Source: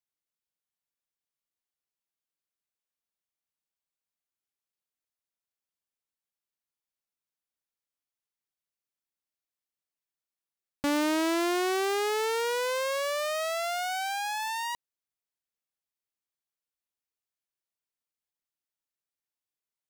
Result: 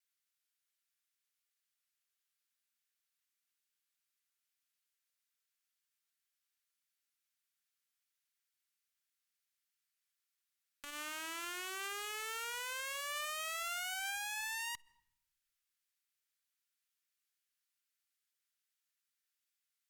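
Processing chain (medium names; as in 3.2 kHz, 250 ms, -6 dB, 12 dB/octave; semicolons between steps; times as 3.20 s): steep high-pass 1.3 kHz 36 dB/octave; peak limiter -31.5 dBFS, peak gain reduction 11.5 dB; vibrato 0.87 Hz 17 cents; one-sided clip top -50 dBFS, bottom -35.5 dBFS; on a send at -11 dB: reverberation RT60 0.75 s, pre-delay 5 ms; on the sum: transformer saturation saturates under 630 Hz; trim +5 dB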